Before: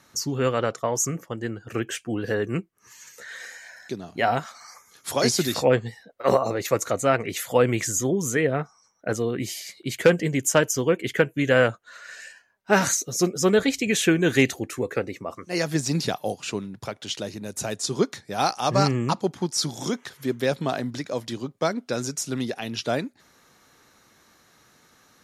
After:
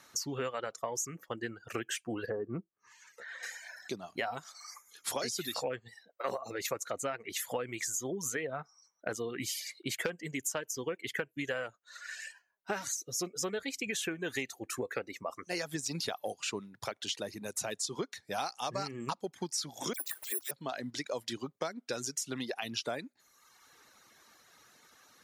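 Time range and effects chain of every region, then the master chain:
2.26–3.43 LPF 1300 Hz 6 dB/oct + treble ducked by the level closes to 990 Hz, closed at -25 dBFS
19.93–20.51 steep high-pass 290 Hz 96 dB/oct + dispersion lows, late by 67 ms, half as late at 2600 Hz + careless resampling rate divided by 4×, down none, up zero stuff
whole clip: reverb removal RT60 0.93 s; low shelf 330 Hz -10.5 dB; compressor 12:1, threshold -32 dBFS

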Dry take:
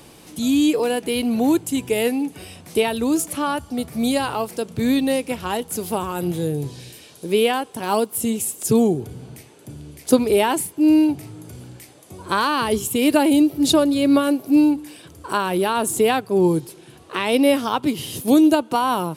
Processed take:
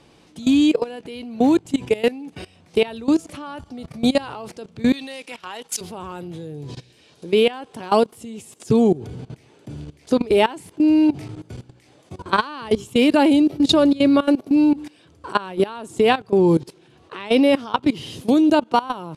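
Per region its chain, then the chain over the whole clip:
4.92–5.81 HPF 280 Hz 6 dB/oct + tilt shelf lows -7 dB, about 920 Hz + three-band expander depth 100%
whole clip: level quantiser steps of 19 dB; LPF 5400 Hz 12 dB/oct; gain +5 dB

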